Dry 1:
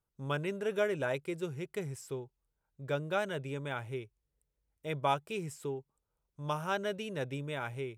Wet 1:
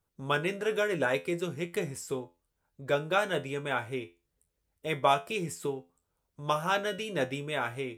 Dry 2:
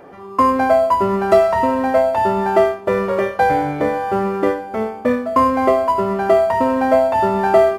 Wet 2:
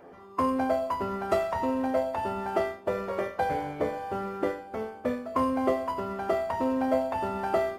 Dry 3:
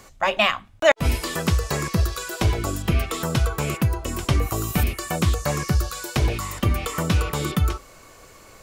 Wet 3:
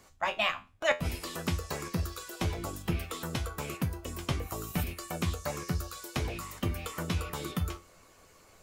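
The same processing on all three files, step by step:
feedback comb 86 Hz, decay 0.28 s, harmonics all, mix 80%; harmonic-percussive split harmonic -7 dB; peak normalisation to -12 dBFS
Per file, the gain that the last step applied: +16.0 dB, +1.0 dB, -0.5 dB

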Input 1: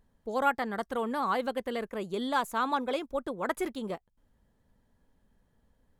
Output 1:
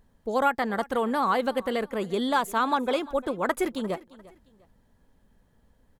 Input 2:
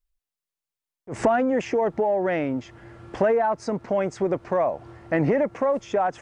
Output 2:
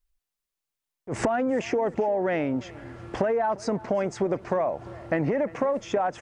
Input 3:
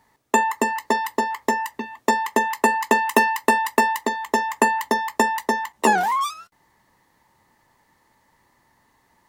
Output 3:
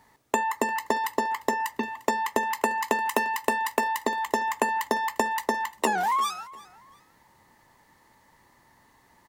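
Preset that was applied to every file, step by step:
compression 6:1, threshold -24 dBFS; feedback delay 349 ms, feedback 32%, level -20.5 dB; normalise loudness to -27 LUFS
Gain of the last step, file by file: +6.0 dB, +2.5 dB, +2.0 dB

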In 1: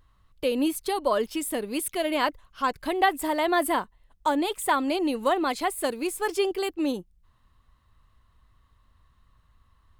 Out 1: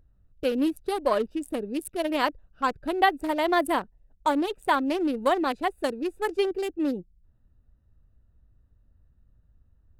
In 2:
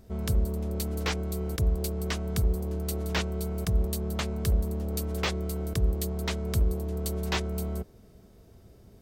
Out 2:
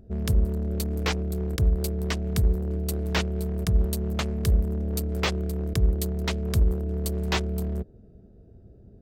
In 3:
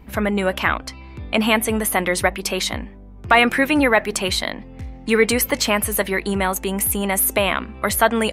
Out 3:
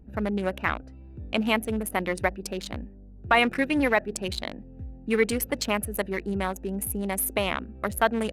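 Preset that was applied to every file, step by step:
local Wiener filter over 41 samples; normalise loudness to -27 LUFS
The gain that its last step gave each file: +1.5 dB, +4.0 dB, -6.0 dB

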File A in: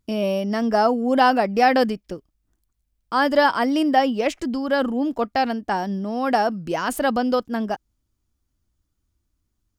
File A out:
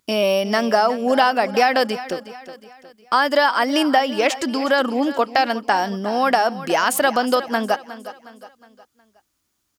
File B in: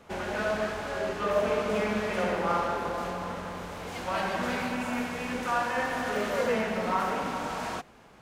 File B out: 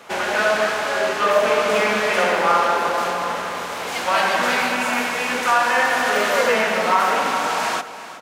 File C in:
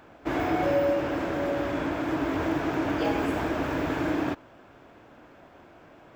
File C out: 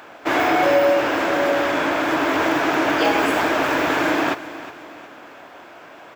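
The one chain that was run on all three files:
high-pass 860 Hz 6 dB/octave; compression 4:1, threshold -26 dBFS; feedback delay 363 ms, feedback 43%, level -15 dB; normalise loudness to -19 LUFS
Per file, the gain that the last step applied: +12.0 dB, +14.5 dB, +14.5 dB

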